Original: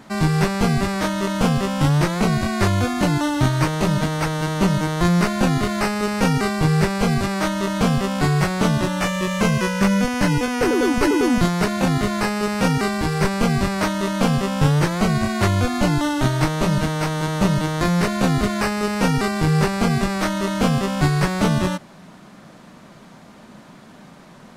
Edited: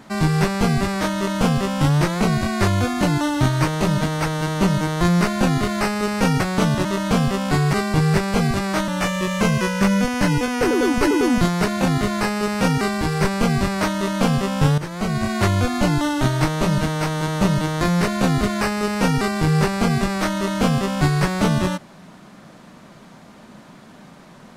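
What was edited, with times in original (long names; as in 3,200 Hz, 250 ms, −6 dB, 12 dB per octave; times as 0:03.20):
0:06.40–0:07.55: swap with 0:08.43–0:08.88
0:14.78–0:15.33: fade in linear, from −13.5 dB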